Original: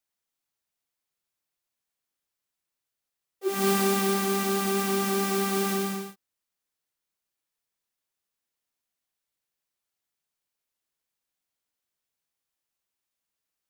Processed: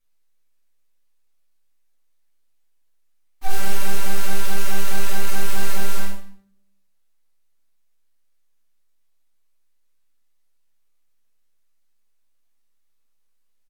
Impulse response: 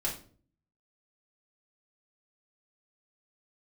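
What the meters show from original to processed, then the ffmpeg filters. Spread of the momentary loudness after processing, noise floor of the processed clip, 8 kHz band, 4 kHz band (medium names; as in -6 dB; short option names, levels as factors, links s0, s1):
5 LU, -60 dBFS, +1.0 dB, +0.5 dB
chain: -filter_complex "[0:a]highpass=210,alimiter=limit=0.0631:level=0:latency=1:release=69,aeval=exprs='abs(val(0))':c=same,asplit=2[s0][s1];[s1]adelay=198.3,volume=0.0794,highshelf=f=4000:g=-4.46[s2];[s0][s2]amix=inputs=2:normalize=0[s3];[1:a]atrim=start_sample=2205,asetrate=34398,aresample=44100[s4];[s3][s4]afir=irnorm=-1:irlink=0,volume=1.5"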